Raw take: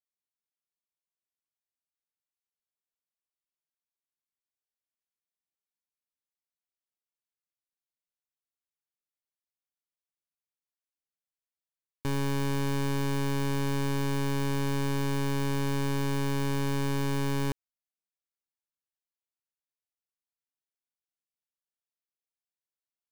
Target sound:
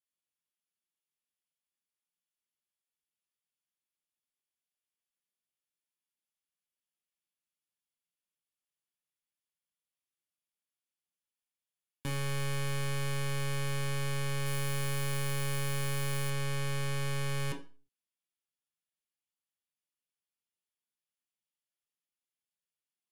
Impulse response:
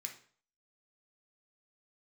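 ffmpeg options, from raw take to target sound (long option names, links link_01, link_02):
-filter_complex "[0:a]asetnsamples=nb_out_samples=441:pad=0,asendcmd='14.46 highshelf g 3;16.3 highshelf g -10.5',highshelf=frequency=12000:gain=-8[link_01];[1:a]atrim=start_sample=2205,asetrate=61740,aresample=44100[link_02];[link_01][link_02]afir=irnorm=-1:irlink=0,volume=6.5dB"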